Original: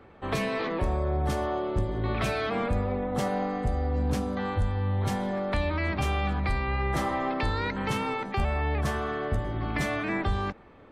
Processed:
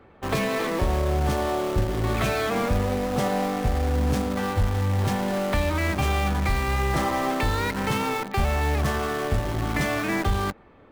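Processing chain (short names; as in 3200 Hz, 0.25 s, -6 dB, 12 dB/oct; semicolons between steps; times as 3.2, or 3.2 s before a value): high shelf 4600 Hz -2.5 dB; in parallel at -5 dB: bit-crush 5-bit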